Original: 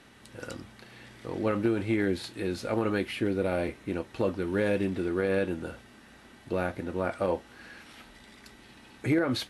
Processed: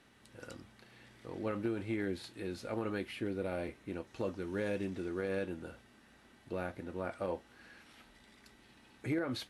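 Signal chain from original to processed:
0:04.07–0:05.45: parametric band 6,300 Hz +6.5 dB 0.59 octaves
level −9 dB

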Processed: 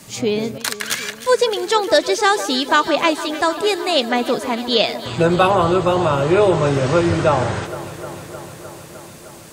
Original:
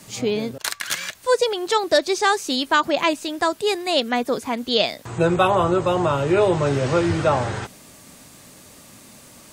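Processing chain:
delay that swaps between a low-pass and a high-pass 153 ms, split 1,700 Hz, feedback 87%, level −13.5 dB
level +3 dB

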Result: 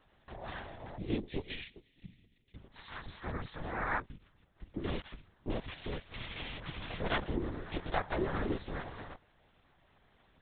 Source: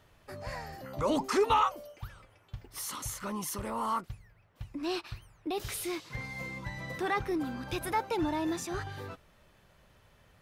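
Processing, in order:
0:00.97–0:02.55: linear-phase brick-wall band-stop 370–2,600 Hz
cochlear-implant simulation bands 6
linear-prediction vocoder at 8 kHz whisper
level −2 dB

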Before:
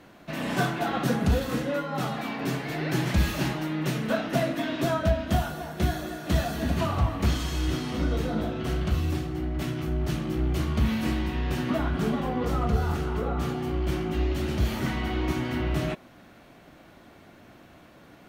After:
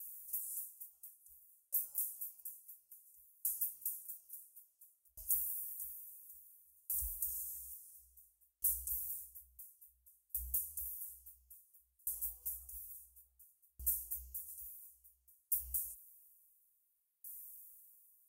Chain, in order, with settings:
inverse Chebyshev band-stop filter 110–4,100 Hz, stop band 50 dB
RIAA equalisation recording
downward compressor, threshold −40 dBFS, peak gain reduction 12.5 dB
tremolo with a ramp in dB decaying 0.58 Hz, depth 38 dB
level +11 dB

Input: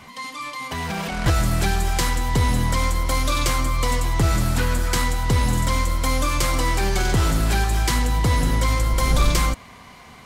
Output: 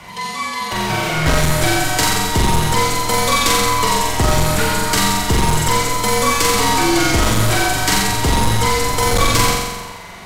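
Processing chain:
flutter between parallel walls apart 7.5 metres, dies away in 1.2 s
hard clipping −12 dBFS, distortion −16 dB
frequency shifter −50 Hz
low-shelf EQ 64 Hz −6.5 dB
level +6 dB

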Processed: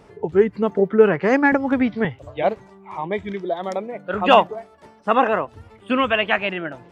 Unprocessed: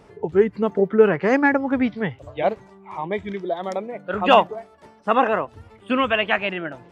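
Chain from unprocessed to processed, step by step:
0:01.52–0:02.05: multiband upward and downward compressor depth 100%
level +1 dB

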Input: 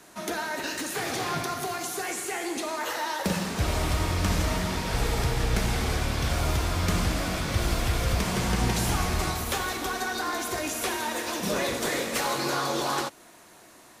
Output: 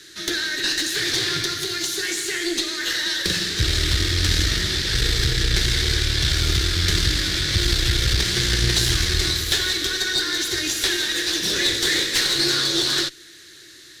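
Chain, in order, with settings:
drawn EQ curve 130 Hz 0 dB, 230 Hz −15 dB, 340 Hz +3 dB, 840 Hz −28 dB, 1,700 Hz +6 dB, 2,500 Hz −1 dB, 3,800 Hz +13 dB, 10,000 Hz −3 dB
tube saturation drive 17 dB, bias 0.6
level +8 dB

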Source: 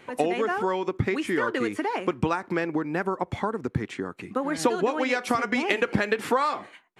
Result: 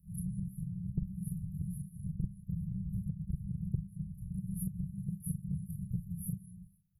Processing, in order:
every overlapping window played backwards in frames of 83 ms
on a send at −23 dB: convolution reverb RT60 0.70 s, pre-delay 5 ms
on the sum: random phases in short frames
brick-wall band-stop 200–9,900 Hz
downward compressor 3 to 1, threshold −42 dBFS, peak gain reduction 14 dB
level +8 dB

